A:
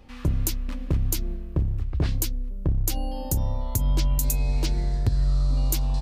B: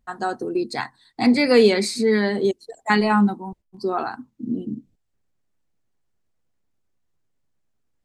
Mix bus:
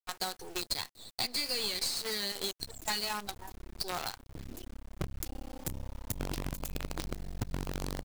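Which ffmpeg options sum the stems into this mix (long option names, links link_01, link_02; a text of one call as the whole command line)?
ffmpeg -i stem1.wav -i stem2.wav -filter_complex "[0:a]adynamicequalizer=threshold=0.0112:dfrequency=260:dqfactor=0.77:tfrequency=260:tqfactor=0.77:attack=5:release=100:ratio=0.375:range=3:mode=boostabove:tftype=bell,aeval=exprs='val(0)+0.00891*(sin(2*PI*50*n/s)+sin(2*PI*2*50*n/s)/2+sin(2*PI*3*50*n/s)/3+sin(2*PI*4*50*n/s)/4+sin(2*PI*5*50*n/s)/5)':channel_layout=same,adelay=2350,volume=-8dB[link_01];[1:a]highpass=620,highshelf=frequency=2500:width_type=q:width=1.5:gain=13,acompressor=threshold=-25dB:ratio=1.5,volume=0dB,asplit=2[link_02][link_03];[link_03]apad=whole_len=368735[link_04];[link_01][link_04]sidechaincompress=threshold=-42dB:ratio=6:attack=10:release=390[link_05];[link_05][link_02]amix=inputs=2:normalize=0,acrusher=bits=5:dc=4:mix=0:aa=0.000001,aeval=exprs='(tanh(3.55*val(0)+0.75)-tanh(0.75))/3.55':channel_layout=same,acompressor=threshold=-30dB:ratio=6" out.wav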